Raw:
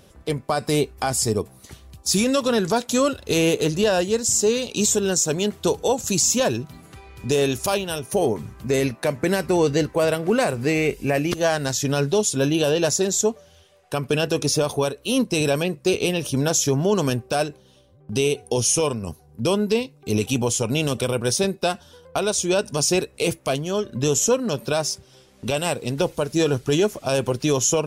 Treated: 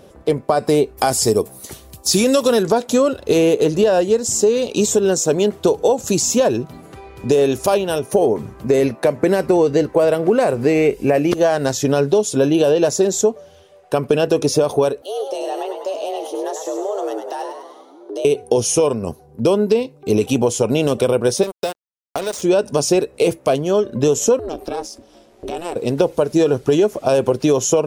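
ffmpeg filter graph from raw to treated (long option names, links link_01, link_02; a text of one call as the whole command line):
ffmpeg -i in.wav -filter_complex "[0:a]asettb=1/sr,asplit=3[link_01][link_02][link_03];[link_01]atrim=end=0.974[link_04];[link_02]atrim=start=0.97:end=2.63,asetpts=PTS-STARTPTS,afade=type=in:duration=0.004:curve=qsin,afade=type=out:start_time=1.656:duration=0.004:curve=qsin,aemphasis=mode=production:type=75kf,acrossover=split=5500[link_05][link_06];[link_06]acompressor=threshold=-21dB:ratio=4:attack=1:release=60[link_07];[link_05][link_07]amix=inputs=2:normalize=0[link_08];[link_03]atrim=start=2.626[link_09];[link_04][link_08]acrossfade=duration=0.004:curve1=hsin:curve2=qsin[link_10];[link_10][link_09]acrossfade=duration=0.004:curve1=qsin:curve2=hsin,asettb=1/sr,asplit=3[link_11][link_12][link_13];[link_11]atrim=end=15.024[link_14];[link_12]atrim=start=15.02:end=18.25,asetpts=PTS-STARTPTS,afade=type=in:duration=0.004:curve=qsin,afade=type=out:start_time=3.226:duration=0.004:curve=qsin,afreqshift=200,acompressor=threshold=-43dB:ratio=2:attack=3.2:release=140:knee=1:detection=peak,asplit=8[link_15][link_16][link_17][link_18][link_19][link_20][link_21][link_22];[link_16]adelay=101,afreqshift=82,volume=-6dB[link_23];[link_17]adelay=202,afreqshift=164,volume=-11.5dB[link_24];[link_18]adelay=303,afreqshift=246,volume=-17dB[link_25];[link_19]adelay=404,afreqshift=328,volume=-22.5dB[link_26];[link_20]adelay=505,afreqshift=410,volume=-28.1dB[link_27];[link_21]adelay=606,afreqshift=492,volume=-33.6dB[link_28];[link_22]adelay=707,afreqshift=574,volume=-39.1dB[link_29];[link_15][link_23][link_24][link_25][link_26][link_27][link_28][link_29]amix=inputs=8:normalize=0,atrim=end_sample=142443[link_30];[link_13]atrim=start=18.246[link_31];[link_14][link_30]acrossfade=duration=0.004:curve1=hsin:curve2=qsin[link_32];[link_32][link_31]acrossfade=duration=0.004:curve1=qsin:curve2=hsin,asettb=1/sr,asplit=3[link_33][link_34][link_35];[link_33]atrim=end=21.434[link_36];[link_34]atrim=start=21.43:end=22.42,asetpts=PTS-STARTPTS,afade=type=in:duration=0.004:curve=qsin,afade=type=out:start_time=0.986:duration=0.004:curve=qsin,acrossover=split=450|3500[link_37][link_38][link_39];[link_37]acompressor=threshold=-38dB:ratio=4[link_40];[link_38]acompressor=threshold=-34dB:ratio=4[link_41];[link_39]acompressor=threshold=-32dB:ratio=4[link_42];[link_40][link_41][link_42]amix=inputs=3:normalize=0,acrusher=bits=4:mix=0:aa=0.5[link_43];[link_35]atrim=start=22.416[link_44];[link_36][link_43]acrossfade=duration=0.004:curve1=hsin:curve2=qsin[link_45];[link_45][link_44]acrossfade=duration=0.004:curve1=qsin:curve2=hsin,asettb=1/sr,asplit=3[link_46][link_47][link_48];[link_46]atrim=end=24.394[link_49];[link_47]atrim=start=24.39:end=25.76,asetpts=PTS-STARTPTS,afade=type=in:duration=0.004:curve=qsin,afade=type=out:start_time=1.366:duration=0.004:curve=qsin,acompressor=threshold=-29dB:ratio=3:attack=3.2:release=140:knee=1:detection=peak,aeval=exprs='val(0)*sin(2*PI*170*n/s)':channel_layout=same[link_50];[link_48]atrim=start=25.756[link_51];[link_49][link_50]acrossfade=duration=0.004:curve1=hsin:curve2=qsin[link_52];[link_52][link_51]acrossfade=duration=0.004:curve1=qsin:curve2=hsin,equalizer=frequency=490:width_type=o:width=2.5:gain=11,acompressor=threshold=-11dB:ratio=6" out.wav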